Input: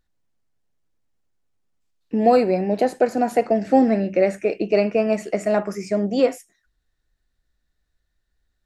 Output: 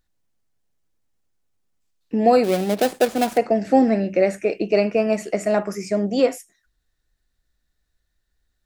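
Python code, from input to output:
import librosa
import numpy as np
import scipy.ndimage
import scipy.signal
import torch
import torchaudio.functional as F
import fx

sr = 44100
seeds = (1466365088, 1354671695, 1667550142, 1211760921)

y = fx.dead_time(x, sr, dead_ms=0.19, at=(2.43, 3.36), fade=0.02)
y = fx.high_shelf(y, sr, hz=4500.0, db=5.0)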